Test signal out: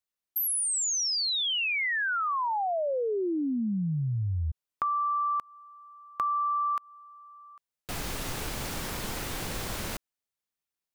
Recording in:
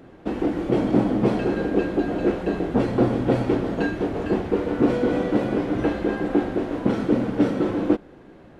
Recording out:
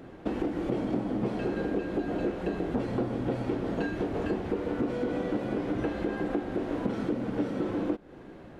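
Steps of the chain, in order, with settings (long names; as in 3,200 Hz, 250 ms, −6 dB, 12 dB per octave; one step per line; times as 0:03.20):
downward compressor, threshold −27 dBFS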